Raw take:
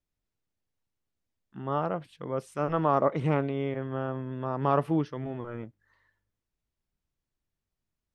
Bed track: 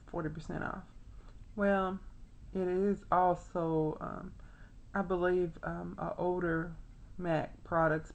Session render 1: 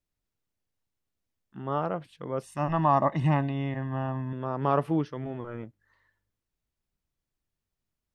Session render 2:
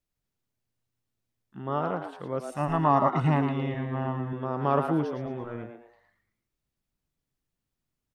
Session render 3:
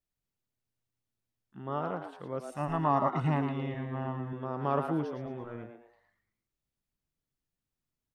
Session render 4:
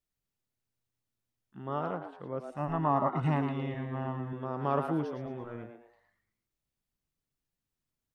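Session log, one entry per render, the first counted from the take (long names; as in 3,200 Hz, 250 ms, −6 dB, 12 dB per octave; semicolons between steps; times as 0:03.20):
0:02.43–0:04.33: comb filter 1.1 ms, depth 86%
echo with shifted repeats 112 ms, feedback 34%, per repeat +120 Hz, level −7.5 dB
level −5 dB
0:01.96–0:03.23: low-pass filter 1,900 Hz 6 dB per octave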